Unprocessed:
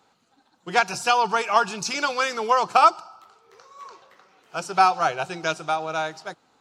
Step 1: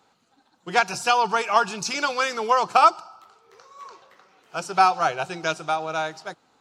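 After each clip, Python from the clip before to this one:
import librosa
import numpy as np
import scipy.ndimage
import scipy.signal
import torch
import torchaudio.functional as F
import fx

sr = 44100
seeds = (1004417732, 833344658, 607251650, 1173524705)

y = x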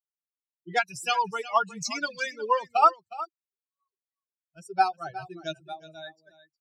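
y = fx.bin_expand(x, sr, power=3.0)
y = y + 10.0 ** (-16.0 / 20.0) * np.pad(y, (int(362 * sr / 1000.0), 0))[:len(y)]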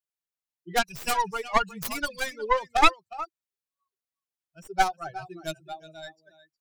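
y = fx.tracing_dist(x, sr, depth_ms=0.34)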